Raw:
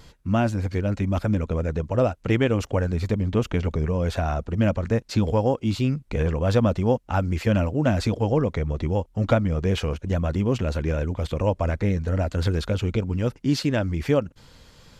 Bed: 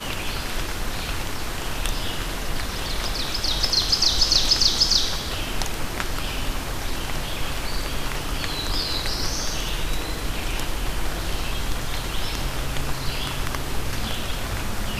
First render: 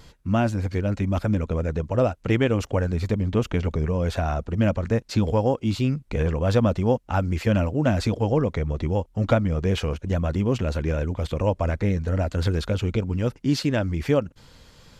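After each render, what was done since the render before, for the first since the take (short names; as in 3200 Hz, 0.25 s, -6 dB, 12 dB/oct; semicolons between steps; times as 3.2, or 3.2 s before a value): nothing audible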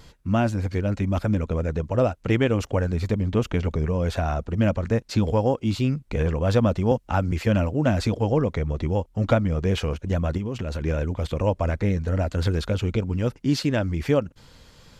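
6.91–7.32 three-band squash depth 40%; 10.37–10.82 compressor, threshold -24 dBFS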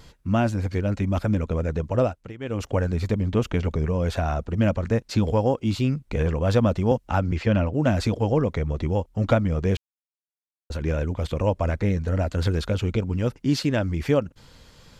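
2–2.71 dip -20 dB, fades 0.33 s; 7.19–7.72 LPF 6100 Hz -> 3800 Hz; 9.77–10.7 mute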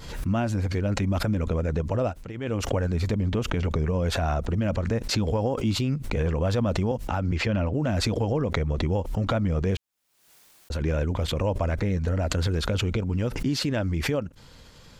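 limiter -17 dBFS, peak gain reduction 9.5 dB; backwards sustainer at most 67 dB/s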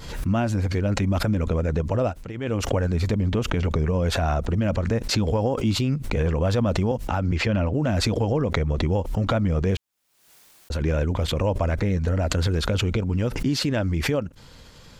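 gain +2.5 dB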